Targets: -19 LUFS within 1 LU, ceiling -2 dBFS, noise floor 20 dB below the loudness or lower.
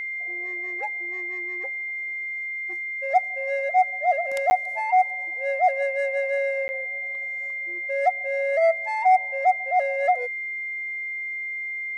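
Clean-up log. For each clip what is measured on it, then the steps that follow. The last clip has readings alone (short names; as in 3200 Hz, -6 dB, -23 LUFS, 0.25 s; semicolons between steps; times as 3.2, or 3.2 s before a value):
dropouts 2; longest dropout 10 ms; steady tone 2100 Hz; tone level -28 dBFS; loudness -24.5 LUFS; peak -9.0 dBFS; loudness target -19.0 LUFS
-> interpolate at 4.5/6.68, 10 ms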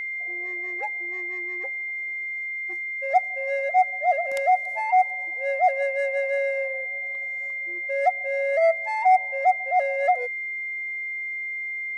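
dropouts 0; steady tone 2100 Hz; tone level -28 dBFS
-> notch 2100 Hz, Q 30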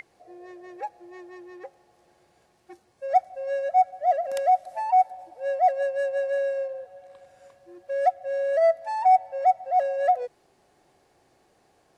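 steady tone none; loudness -24.5 LUFS; peak -10.0 dBFS; loudness target -19.0 LUFS
-> gain +5.5 dB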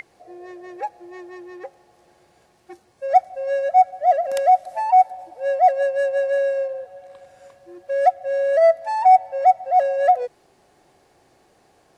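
loudness -19.0 LUFS; peak -4.5 dBFS; noise floor -59 dBFS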